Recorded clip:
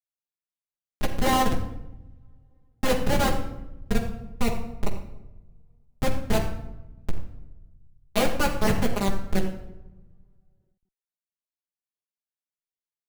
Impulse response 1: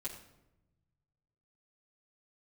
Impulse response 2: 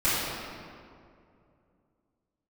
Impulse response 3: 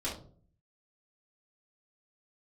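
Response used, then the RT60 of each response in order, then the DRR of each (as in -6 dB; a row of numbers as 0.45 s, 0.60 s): 1; 0.90 s, 2.4 s, 0.50 s; -6.5 dB, -14.5 dB, -7.5 dB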